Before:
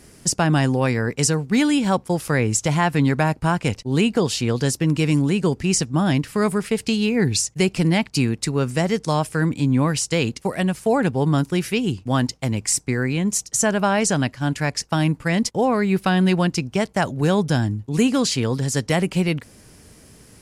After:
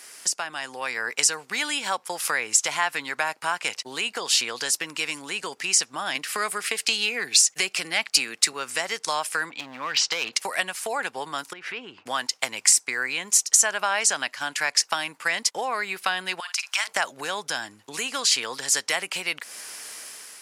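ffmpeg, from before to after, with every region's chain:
-filter_complex "[0:a]asettb=1/sr,asplit=3[a][b][c];[a]atrim=end=6.154[d];[b]atrim=start=6.15:end=8.53,asetpts=PTS-STARTPTS,afade=t=in:d=0.004:c=qsin,afade=t=out:st=2.376:d=0.004:c=qsin,highpass=f=120:w=0.5412,highpass=f=120:w=1.3066,bandreject=f=950:w=5.6,acontrast=40[e];[c]atrim=start=8.526[f];[d][e]acrossfade=d=0.004:c1=hsin:c2=qsin[g];[g][f]acrossfade=d=0.004:c1=qsin:c2=hsin,asettb=1/sr,asplit=3[h][i][j];[h]atrim=end=9.504[k];[i]atrim=start=9.5:end=10.33,asetpts=PTS-STARTPTS,afade=t=in:d=0.004:c=qsin,afade=t=out:st=0.826:d=0.004:c=qsin,lowpass=f=4.7k:w=0.5412,lowpass=f=4.7k:w=1.3066,acompressor=threshold=-24dB:ratio=6:attack=3.2:release=140:knee=1:detection=peak,volume=23dB,asoftclip=hard,volume=-23dB[l];[j]atrim=start=10.326[m];[k][l]acrossfade=d=0.004:c1=hsin:c2=qsin[n];[n][m]acrossfade=d=0.004:c1=qsin:c2=hsin,asettb=1/sr,asplit=3[o][p][q];[o]atrim=end=11.534[r];[p]atrim=start=11.53:end=12.06,asetpts=PTS-STARTPTS,afade=t=in:d=0.004:c=qsin,afade=t=out:st=0.526:d=0.004:c=qsin,lowpass=1.8k,acompressor=threshold=-31dB:ratio=6:attack=3.2:release=140:knee=1:detection=peak[s];[q]atrim=start=12.056[t];[r][s]acrossfade=d=0.004:c1=hsin:c2=qsin[u];[u][t]acrossfade=d=0.004:c1=qsin:c2=hsin,asettb=1/sr,asplit=3[v][w][x];[v]atrim=end=16.404[y];[w]atrim=start=16.4:end=16.87,asetpts=PTS-STARTPTS,afade=t=in:d=0.004:c=qsin,afade=t=out:st=0.466:d=0.004:c=qsin,highpass=f=980:w=0.5412,highpass=f=980:w=1.3066,acompressor=threshold=-33dB:ratio=10:attack=3.2:release=140:knee=1:detection=peak,asplit=2[z][aa];[aa]adelay=50,volume=-11.5dB[ab];[z][ab]amix=inputs=2:normalize=0,atrim=end_sample=20727[ac];[x]atrim=start=16.866[ad];[y][ac]acrossfade=d=0.004:c1=hsin:c2=qsin[ae];[ae][ad]acrossfade=d=0.004:c1=qsin:c2=hsin,acompressor=threshold=-29dB:ratio=6,highpass=1.1k,dynaudnorm=f=540:g=3:m=6.5dB,volume=7.5dB"

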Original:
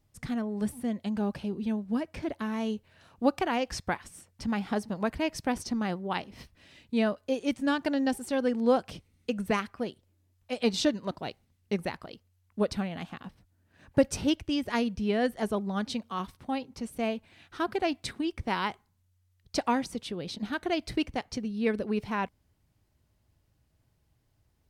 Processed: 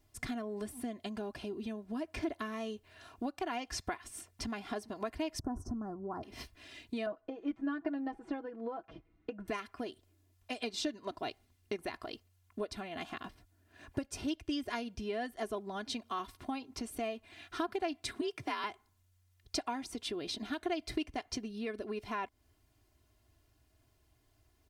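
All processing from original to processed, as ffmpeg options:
-filter_complex "[0:a]asettb=1/sr,asplit=3[a][b][c];[a]atrim=end=5.394[d];[b]atrim=start=5.39:end=6.23,asetpts=PTS-STARTPTS,afade=t=in:d=0.004:c=qsin,afade=t=out:st=0.836:d=0.004:c=qsin,bass=f=250:g=14,treble=f=4k:g=-13,acompressor=threshold=-24dB:ratio=2.5:attack=3.2:release=140:knee=1:detection=peak,asuperstop=centerf=2900:order=8:qfactor=0.65[e];[c]atrim=start=6.226[f];[d][e]acrossfade=d=0.004:c1=hsin:c2=qsin[g];[g][f]acrossfade=d=0.004:c1=qsin:c2=hsin,asettb=1/sr,asplit=3[h][i][j];[h]atrim=end=7.064[k];[i]atrim=start=7.06:end=9.48,asetpts=PTS-STARTPTS,afade=t=in:d=0.004:c=qsin,afade=t=out:st=2.416:d=0.004:c=qsin,lowpass=1.4k,aecho=1:1:6.1:0.73,atrim=end_sample=106722[l];[j]atrim=start=9.476[m];[k][l]acrossfade=d=0.004:c1=hsin:c2=qsin[n];[n][m]acrossfade=d=0.004:c1=qsin:c2=hsin,asettb=1/sr,asplit=3[o][p][q];[o]atrim=end=18.214[r];[p]atrim=start=18.21:end=18.64,asetpts=PTS-STARTPTS,afade=t=in:d=0.004:c=qsin,afade=t=out:st=0.426:d=0.004:c=qsin,afreqshift=56,lowshelf=f=490:g=-6.5[s];[q]atrim=start=18.636[t];[r][s]acrossfade=d=0.004:c1=hsin:c2=qsin[u];[u][t]acrossfade=d=0.004:c1=qsin:c2=hsin,lowshelf=f=250:g=-5,acompressor=threshold=-38dB:ratio=6,aecho=1:1:2.9:0.69,volume=2dB"

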